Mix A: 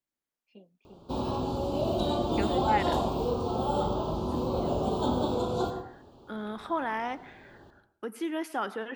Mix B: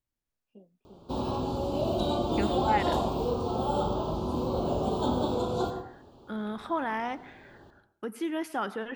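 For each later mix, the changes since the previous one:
first voice: add moving average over 21 samples
second voice: remove high-pass filter 220 Hz 12 dB per octave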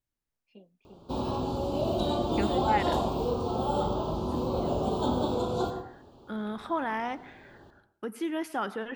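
first voice: remove moving average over 21 samples

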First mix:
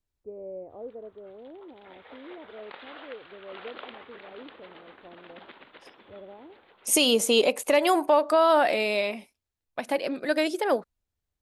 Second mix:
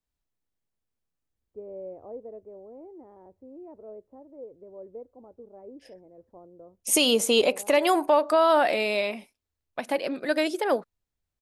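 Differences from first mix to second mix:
first voice: entry +1.30 s
background: muted

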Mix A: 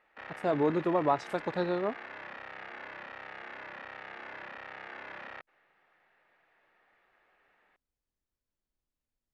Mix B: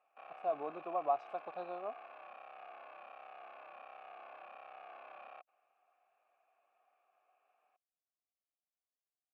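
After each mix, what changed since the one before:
background +3.0 dB
master: add formant filter a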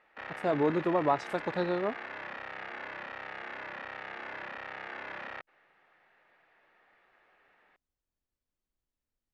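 master: remove formant filter a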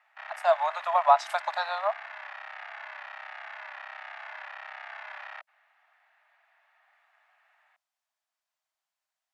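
speech +9.5 dB
master: add Butterworth high-pass 620 Hz 96 dB per octave

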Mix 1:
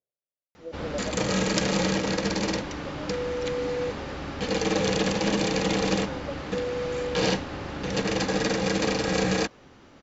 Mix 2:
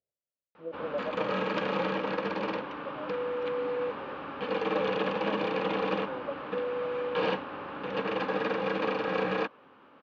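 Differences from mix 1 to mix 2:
background: add loudspeaker in its box 350–2,700 Hz, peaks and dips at 360 Hz −6 dB, 690 Hz −6 dB, 1,100 Hz +4 dB, 2,000 Hz −9 dB
master: add low-shelf EQ 82 Hz +8 dB

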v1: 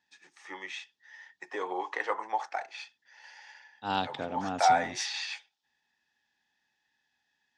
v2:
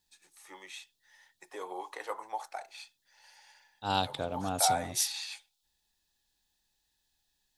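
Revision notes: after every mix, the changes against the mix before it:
first voice −6.5 dB
master: remove loudspeaker in its box 140–5,600 Hz, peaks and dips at 240 Hz +5 dB, 590 Hz −3 dB, 1,800 Hz +6 dB, 4,100 Hz −7 dB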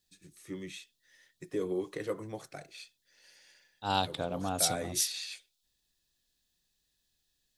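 first voice: remove high-pass with resonance 850 Hz, resonance Q 8.8

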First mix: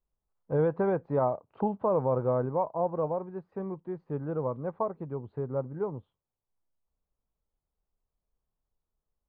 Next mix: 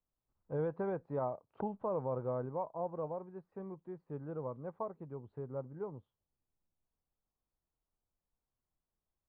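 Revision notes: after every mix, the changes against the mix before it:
first voice −9.5 dB
second voice: remove Butterworth high-pass 390 Hz 48 dB per octave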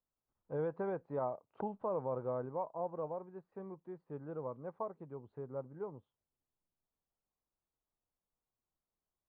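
master: add low-shelf EQ 150 Hz −8 dB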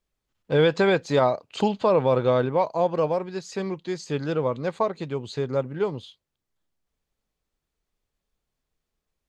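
first voice +11.5 dB
master: remove transistor ladder low-pass 1,300 Hz, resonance 30%

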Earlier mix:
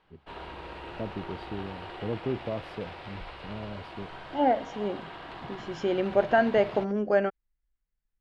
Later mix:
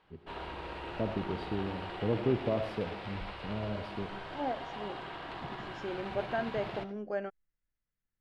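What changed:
first voice: send on
second voice −11.5 dB

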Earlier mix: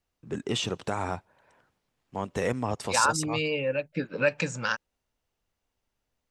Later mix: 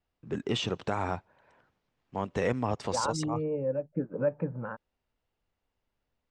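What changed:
second voice: add Bessel low-pass filter 720 Hz, order 4
master: add high-frequency loss of the air 100 metres

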